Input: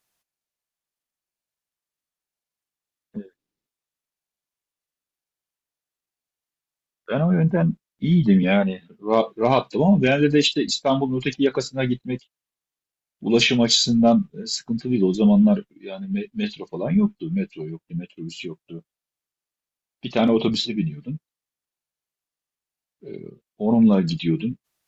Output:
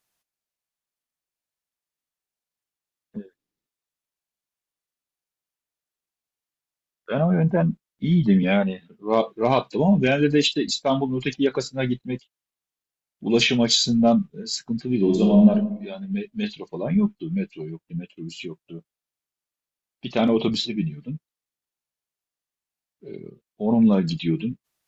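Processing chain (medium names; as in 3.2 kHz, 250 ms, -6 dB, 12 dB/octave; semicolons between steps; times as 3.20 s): 7.17–7.61 s: peaking EQ 700 Hz +5.5 dB 0.77 oct; 14.95–15.49 s: reverb throw, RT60 0.82 s, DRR 1 dB; trim -1.5 dB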